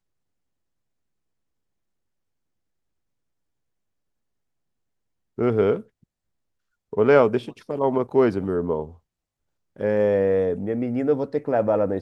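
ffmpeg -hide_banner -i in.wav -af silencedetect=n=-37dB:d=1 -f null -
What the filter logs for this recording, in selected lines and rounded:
silence_start: 0.00
silence_end: 5.38 | silence_duration: 5.38
silence_start: 5.81
silence_end: 6.93 | silence_duration: 1.12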